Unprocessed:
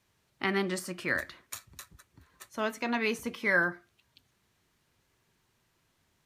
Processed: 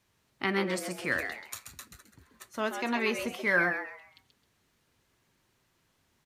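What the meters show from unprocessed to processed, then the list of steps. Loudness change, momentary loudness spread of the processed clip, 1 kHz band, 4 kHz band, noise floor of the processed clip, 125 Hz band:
+0.5 dB, 17 LU, +1.5 dB, +1.0 dB, -73 dBFS, 0.0 dB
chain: frequency-shifting echo 132 ms, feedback 30%, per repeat +150 Hz, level -7.5 dB

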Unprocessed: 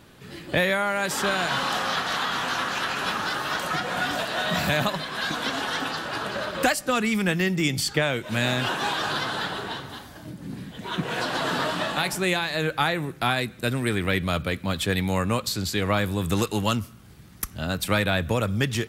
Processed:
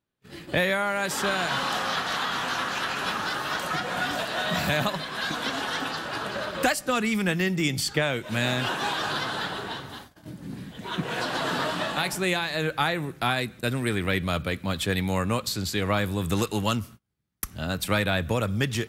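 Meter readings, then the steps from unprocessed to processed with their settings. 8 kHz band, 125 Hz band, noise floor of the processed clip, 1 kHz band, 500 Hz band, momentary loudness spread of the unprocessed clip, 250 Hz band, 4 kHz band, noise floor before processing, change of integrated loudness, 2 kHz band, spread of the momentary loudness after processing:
-1.5 dB, -1.5 dB, -50 dBFS, -1.5 dB, -1.5 dB, 7 LU, -1.5 dB, -1.5 dB, -46 dBFS, -1.5 dB, -1.5 dB, 7 LU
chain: gate -41 dBFS, range -32 dB; trim -1.5 dB

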